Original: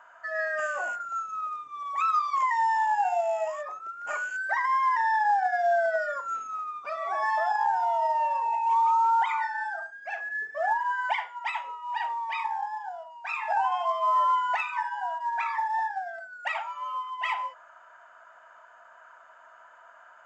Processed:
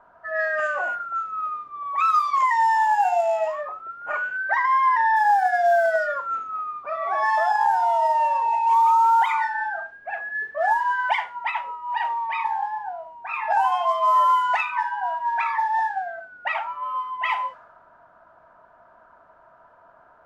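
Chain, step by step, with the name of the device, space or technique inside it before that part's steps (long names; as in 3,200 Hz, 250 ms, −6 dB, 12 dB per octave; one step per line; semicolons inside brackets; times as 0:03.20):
cassette deck with a dynamic noise filter (white noise bed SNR 30 dB; low-pass that shuts in the quiet parts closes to 720 Hz, open at −20.5 dBFS)
0:04.11–0:05.15: low-pass filter 5,700 Hz → 3,200 Hz 12 dB per octave
level +5.5 dB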